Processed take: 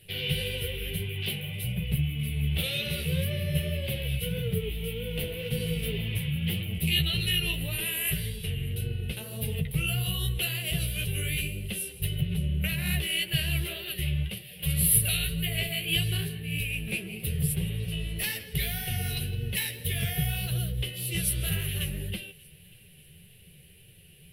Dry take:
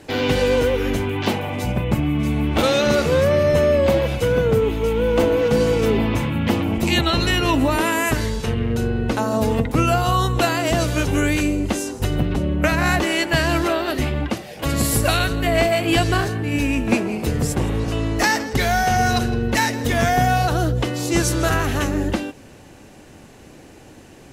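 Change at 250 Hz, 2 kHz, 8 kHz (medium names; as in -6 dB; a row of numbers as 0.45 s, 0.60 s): -15.0 dB, -10.5 dB, -3.5 dB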